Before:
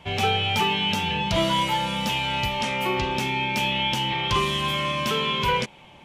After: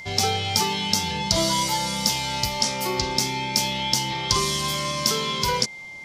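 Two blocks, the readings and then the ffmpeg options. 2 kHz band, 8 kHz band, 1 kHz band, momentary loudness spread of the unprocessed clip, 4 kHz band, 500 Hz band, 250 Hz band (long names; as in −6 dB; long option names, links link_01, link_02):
−3.5 dB, +13.5 dB, −1.5 dB, 3 LU, +1.5 dB, −1.0 dB, −1.0 dB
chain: -af "aeval=exprs='val(0)+0.0282*sin(2*PI*2100*n/s)':channel_layout=same,highshelf=frequency=3700:width_type=q:width=3:gain=10.5,volume=-1dB"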